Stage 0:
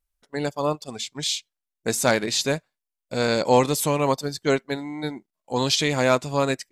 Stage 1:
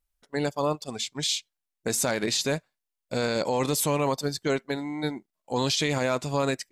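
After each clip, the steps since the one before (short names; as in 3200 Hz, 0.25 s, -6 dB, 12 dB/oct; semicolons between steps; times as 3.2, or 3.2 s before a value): limiter -16 dBFS, peak gain reduction 11 dB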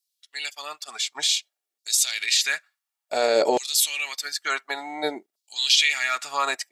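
bell 1000 Hz -3.5 dB 0.65 oct; LFO high-pass saw down 0.56 Hz 380–4900 Hz; notch comb 510 Hz; gain +6 dB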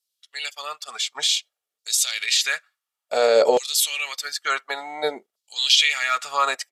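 thirty-one-band EQ 315 Hz -9 dB, 500 Hz +9 dB, 1250 Hz +6 dB, 3150 Hz +4 dB; downsampling 32000 Hz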